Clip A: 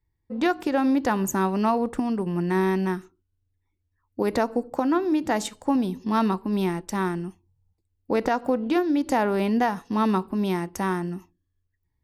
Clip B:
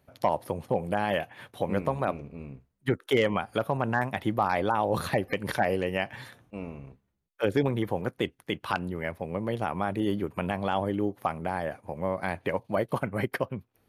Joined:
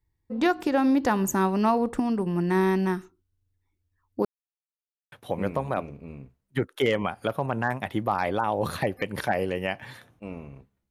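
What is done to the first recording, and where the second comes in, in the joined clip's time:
clip A
4.25–5.12 s: mute
5.12 s: go over to clip B from 1.43 s

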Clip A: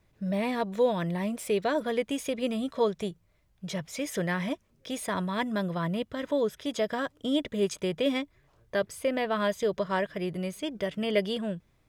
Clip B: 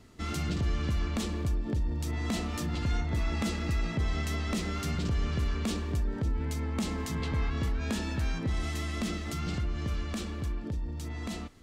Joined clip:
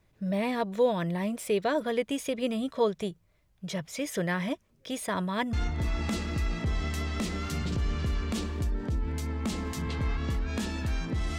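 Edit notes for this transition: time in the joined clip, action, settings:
clip A
5.53 s: go over to clip B from 2.86 s

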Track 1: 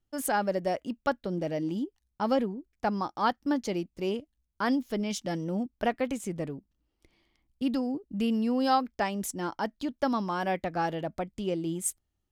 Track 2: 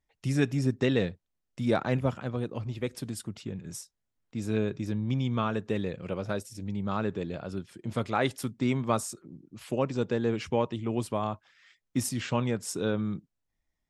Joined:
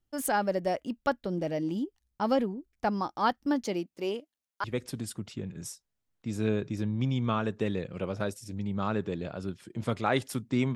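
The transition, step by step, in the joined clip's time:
track 1
3.64–4.64 s: high-pass 140 Hz -> 650 Hz
4.64 s: go over to track 2 from 2.73 s

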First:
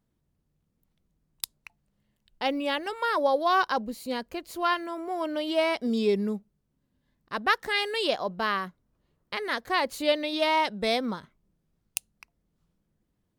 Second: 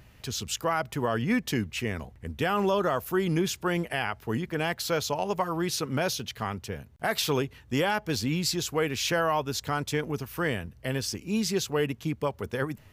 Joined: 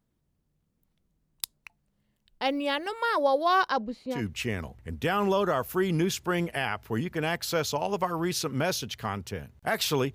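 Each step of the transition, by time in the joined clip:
first
3.68–4.27 s: low-pass 9.4 kHz -> 1.2 kHz
4.18 s: go over to second from 1.55 s, crossfade 0.18 s

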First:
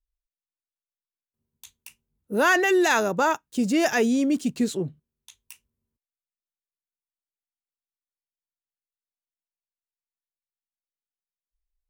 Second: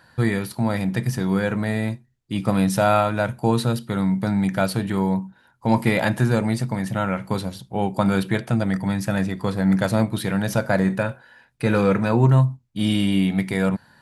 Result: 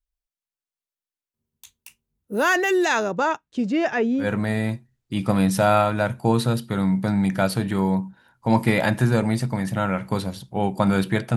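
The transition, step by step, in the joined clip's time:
first
2.84–4.28 s: low-pass 7.7 kHz -> 1.8 kHz
4.23 s: go over to second from 1.42 s, crossfade 0.10 s

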